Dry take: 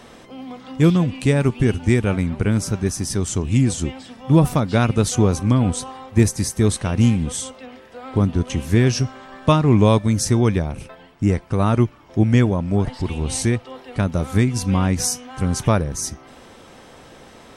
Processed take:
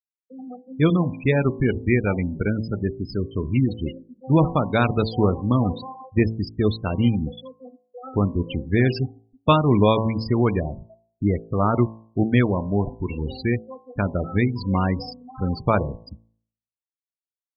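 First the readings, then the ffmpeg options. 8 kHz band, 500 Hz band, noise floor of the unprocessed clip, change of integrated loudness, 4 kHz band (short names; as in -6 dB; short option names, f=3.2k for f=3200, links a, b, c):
under -40 dB, -1.0 dB, -45 dBFS, -3.0 dB, -5.5 dB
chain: -af "aresample=11025,acrusher=bits=7:mix=0:aa=0.000001,aresample=44100,afftfilt=real='re*gte(hypot(re,im),0.0794)':imag='im*gte(hypot(re,im),0.0794)':win_size=1024:overlap=0.75,lowshelf=f=320:g=-7,bandreject=f=55.7:t=h:w=4,bandreject=f=111.4:t=h:w=4,bandreject=f=167.1:t=h:w=4,bandreject=f=222.8:t=h:w=4,bandreject=f=278.5:t=h:w=4,bandreject=f=334.2:t=h:w=4,bandreject=f=389.9:t=h:w=4,bandreject=f=445.6:t=h:w=4,bandreject=f=501.3:t=h:w=4,bandreject=f=557:t=h:w=4,bandreject=f=612.7:t=h:w=4,bandreject=f=668.4:t=h:w=4,bandreject=f=724.1:t=h:w=4,bandreject=f=779.8:t=h:w=4,bandreject=f=835.5:t=h:w=4,bandreject=f=891.2:t=h:w=4,bandreject=f=946.9:t=h:w=4,bandreject=f=1.0026k:t=h:w=4,bandreject=f=1.0583k:t=h:w=4,bandreject=f=1.114k:t=h:w=4,volume=2dB"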